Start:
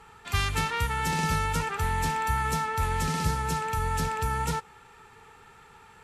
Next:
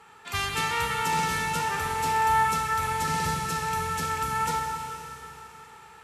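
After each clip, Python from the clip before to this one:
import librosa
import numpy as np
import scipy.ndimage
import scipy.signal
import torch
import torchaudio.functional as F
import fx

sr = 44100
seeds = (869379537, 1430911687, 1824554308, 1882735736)

y = scipy.signal.sosfilt(scipy.signal.butter(2, 61.0, 'highpass', fs=sr, output='sos'), x)
y = fx.low_shelf(y, sr, hz=150.0, db=-11.0)
y = fx.rev_schroeder(y, sr, rt60_s=3.4, comb_ms=30, drr_db=1.5)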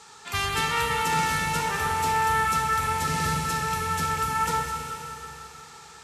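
y = fx.dmg_noise_band(x, sr, seeds[0], low_hz=3300.0, high_hz=8300.0, level_db=-55.0)
y = fx.echo_alternate(y, sr, ms=103, hz=1400.0, feedback_pct=61, wet_db=-6.0)
y = y * 10.0 ** (1.5 / 20.0)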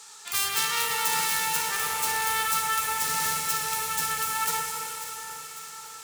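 y = fx.self_delay(x, sr, depth_ms=0.088)
y = fx.riaa(y, sr, side='recording')
y = fx.echo_alternate(y, sr, ms=273, hz=2000.0, feedback_pct=75, wet_db=-9.0)
y = y * 10.0 ** (-4.5 / 20.0)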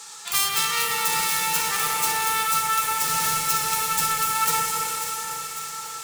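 y = fx.octave_divider(x, sr, octaves=1, level_db=-6.0)
y = y + 0.41 * np.pad(y, (int(6.0 * sr / 1000.0), 0))[:len(y)]
y = fx.rider(y, sr, range_db=3, speed_s=0.5)
y = y * 10.0 ** (3.5 / 20.0)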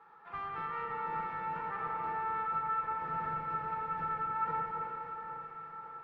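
y = scipy.signal.sosfilt(scipy.signal.butter(4, 1500.0, 'lowpass', fs=sr, output='sos'), x)
y = y * 10.0 ** (-8.0 / 20.0)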